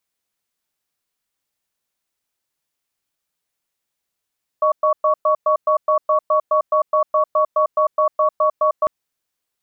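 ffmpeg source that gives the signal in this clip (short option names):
-f lavfi -i "aevalsrc='0.168*(sin(2*PI*616*t)+sin(2*PI*1120*t))*clip(min(mod(t,0.21),0.1-mod(t,0.21))/0.005,0,1)':d=4.25:s=44100"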